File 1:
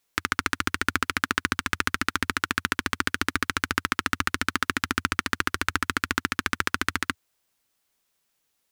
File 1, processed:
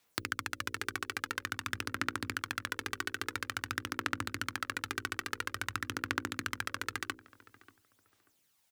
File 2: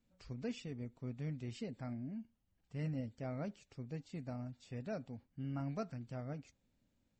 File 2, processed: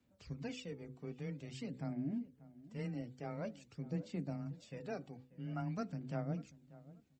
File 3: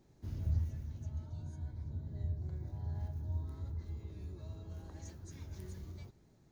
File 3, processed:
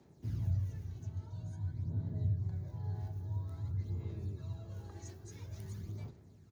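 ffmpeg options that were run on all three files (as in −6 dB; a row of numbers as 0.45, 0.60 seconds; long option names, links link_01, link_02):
-filter_complex "[0:a]highpass=48,bandreject=frequency=60:width_type=h:width=6,bandreject=frequency=120:width_type=h:width=6,bandreject=frequency=180:width_type=h:width=6,bandreject=frequency=240:width_type=h:width=6,bandreject=frequency=300:width_type=h:width=6,bandreject=frequency=360:width_type=h:width=6,bandreject=frequency=420:width_type=h:width=6,bandreject=frequency=480:width_type=h:width=6,bandreject=frequency=540:width_type=h:width=6,acompressor=threshold=-31dB:ratio=12,aphaser=in_gain=1:out_gain=1:delay=2.7:decay=0.48:speed=0.49:type=sinusoidal,asplit=2[link_01][link_02];[link_02]adelay=587,lowpass=frequency=1300:poles=1,volume=-18dB,asplit=2[link_03][link_04];[link_04]adelay=587,lowpass=frequency=1300:poles=1,volume=0.27[link_05];[link_01][link_03][link_05]amix=inputs=3:normalize=0,afreqshift=15"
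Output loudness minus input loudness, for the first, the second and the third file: −10.0, +0.5, +2.0 LU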